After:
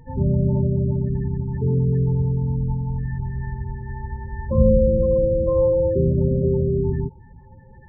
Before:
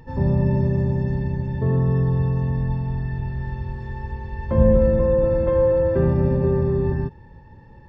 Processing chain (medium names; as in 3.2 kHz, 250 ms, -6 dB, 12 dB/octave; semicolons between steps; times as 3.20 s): feedback echo behind a high-pass 956 ms, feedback 46%, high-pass 3.1 kHz, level -5.5 dB; loudest bins only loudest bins 16